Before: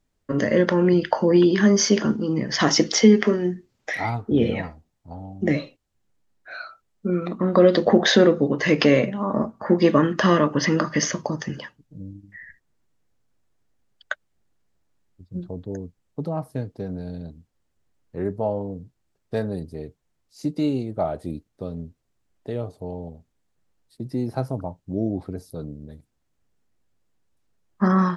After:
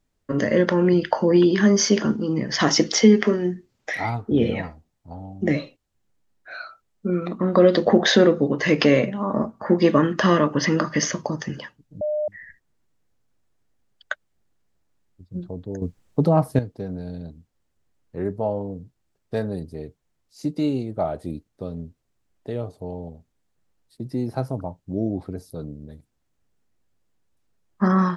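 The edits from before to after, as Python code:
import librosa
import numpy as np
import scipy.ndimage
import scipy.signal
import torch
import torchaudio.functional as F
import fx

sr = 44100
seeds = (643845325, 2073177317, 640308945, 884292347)

y = fx.edit(x, sr, fx.bleep(start_s=12.01, length_s=0.27, hz=604.0, db=-21.0),
    fx.clip_gain(start_s=15.82, length_s=0.77, db=10.0), tone=tone)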